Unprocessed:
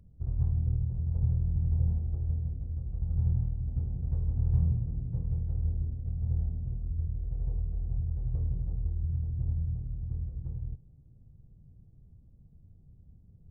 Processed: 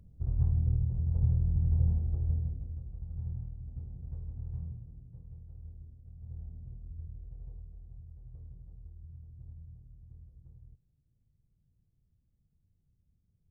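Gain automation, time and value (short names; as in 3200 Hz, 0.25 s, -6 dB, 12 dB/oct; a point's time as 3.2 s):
2.38 s +0.5 dB
3.08 s -10 dB
4.13 s -10 dB
5.15 s -17 dB
6.08 s -17 dB
6.58 s -11 dB
7.17 s -11 dB
7.94 s -17.5 dB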